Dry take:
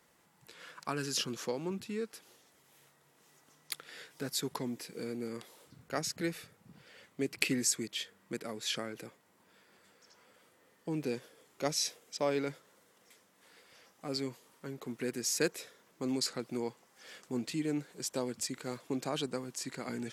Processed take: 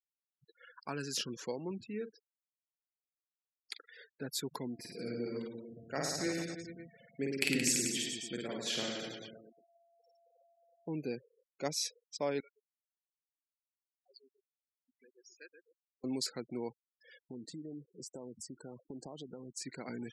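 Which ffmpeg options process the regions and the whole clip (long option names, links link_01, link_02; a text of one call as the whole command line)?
ffmpeg -i in.wav -filter_complex "[0:a]asettb=1/sr,asplit=3[link_01][link_02][link_03];[link_01]atrim=end=1.874[link_04];[link_02]atrim=start=1.87:end=3.95,asetpts=PTS-STARTPTS,afade=type=in:duration=0.004:curve=qsin,afade=type=out:start_time=2.076:duration=0.004:curve=qsin,highpass=120,lowpass=6900,asplit=2[link_05][link_06];[link_06]adelay=43,volume=-10dB[link_07];[link_05][link_07]amix=inputs=2:normalize=0,atrim=end_sample=91728[link_08];[link_03]atrim=start=3.946[link_09];[link_04][link_08]acrossfade=duration=0.004:curve1=hsin:curve2=qsin[link_10];[link_10][link_09]acrossfade=duration=0.004:curve1=qsin:curve2=hsin,asettb=1/sr,asplit=3[link_11][link_12][link_13];[link_11]atrim=end=4.744[link_14];[link_12]atrim=start=4.74:end=10.89,asetpts=PTS-STARTPTS,afade=type=in:duration=0.004:curve=qsin,afade=type=out:start_time=6.146:duration=0.004:curve=qsin,aecho=1:1:50|107.5|173.6|249.7|337.1|437.7|553.3:0.794|0.631|0.501|0.398|0.316|0.251|0.2,atrim=end_sample=271215,aeval=exprs='val(0)+0.000794*sin(2*PI*680*n/s)':channel_layout=same[link_15];[link_13]atrim=start=10.886[link_16];[link_14][link_15]acrossfade=duration=0.004:curve1=hsin:curve2=qsin[link_17];[link_17][link_16]acrossfade=duration=0.004:curve1=qsin:curve2=hsin,asettb=1/sr,asplit=3[link_18][link_19][link_20];[link_18]atrim=end=12.404[link_21];[link_19]atrim=start=12.4:end=16.04,asetpts=PTS-STARTPTS,afade=type=in:duration=0.004:curve=qsin,afade=type=out:start_time=3.636:duration=0.004:curve=qsin,lowpass=2300,aderivative,asplit=2[link_22][link_23];[link_23]adelay=130,lowpass=frequency=1400:poles=1,volume=-3.5dB,asplit=2[link_24][link_25];[link_25]adelay=130,lowpass=frequency=1400:poles=1,volume=0.51,asplit=2[link_26][link_27];[link_27]adelay=130,lowpass=frequency=1400:poles=1,volume=0.51,asplit=2[link_28][link_29];[link_29]adelay=130,lowpass=frequency=1400:poles=1,volume=0.51,asplit=2[link_30][link_31];[link_31]adelay=130,lowpass=frequency=1400:poles=1,volume=0.51,asplit=2[link_32][link_33];[link_33]adelay=130,lowpass=frequency=1400:poles=1,volume=0.51,asplit=2[link_34][link_35];[link_35]adelay=130,lowpass=frequency=1400:poles=1,volume=0.51[link_36];[link_22][link_24][link_26][link_28][link_30][link_32][link_34][link_36]amix=inputs=8:normalize=0,atrim=end_sample=160524[link_37];[link_20]atrim=start=16.036[link_38];[link_21][link_37]acrossfade=duration=0.004:curve1=hsin:curve2=qsin[link_39];[link_39][link_38]acrossfade=duration=0.004:curve1=qsin:curve2=hsin,asettb=1/sr,asplit=3[link_40][link_41][link_42];[link_40]atrim=end=17.194[link_43];[link_41]atrim=start=17.19:end=19.54,asetpts=PTS-STARTPTS,afade=type=in:duration=0.004:curve=qsin,afade=type=out:start_time=2.346:duration=0.004:curve=qsin,equalizer=frequency=2500:width_type=o:width=0.77:gain=-13.5,acompressor=threshold=-39dB:ratio=5:attack=3.2:release=140:knee=1:detection=peak[link_44];[link_42]atrim=start=19.536[link_45];[link_43][link_44]acrossfade=duration=0.004:curve1=hsin:curve2=qsin[link_46];[link_46][link_45]acrossfade=duration=0.004:curve1=qsin:curve2=hsin,bandreject=frequency=1200:width=8.6,afftfilt=real='re*gte(hypot(re,im),0.00631)':imag='im*gte(hypot(re,im),0.00631)':win_size=1024:overlap=0.75,volume=-3dB" out.wav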